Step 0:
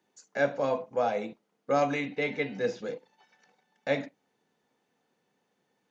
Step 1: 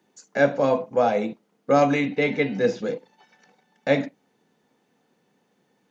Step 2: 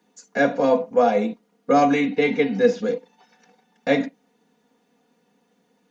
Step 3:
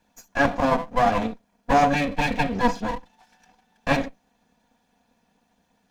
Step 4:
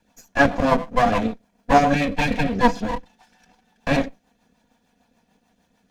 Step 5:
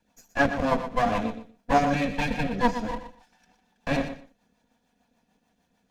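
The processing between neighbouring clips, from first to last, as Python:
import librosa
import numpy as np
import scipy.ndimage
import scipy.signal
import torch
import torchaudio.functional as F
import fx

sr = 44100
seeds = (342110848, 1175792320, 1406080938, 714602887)

y1 = fx.peak_eq(x, sr, hz=210.0, db=5.0, octaves=1.9)
y1 = y1 * 10.0 ** (6.0 / 20.0)
y2 = y1 + 0.72 * np.pad(y1, (int(4.2 * sr / 1000.0), 0))[:len(y1)]
y3 = fx.lower_of_two(y2, sr, delay_ms=1.2)
y4 = fx.rotary(y3, sr, hz=6.7)
y4 = y4 * 10.0 ** (5.0 / 20.0)
y5 = fx.echo_feedback(y4, sr, ms=120, feedback_pct=18, wet_db=-10.5)
y5 = y5 * 10.0 ** (-6.0 / 20.0)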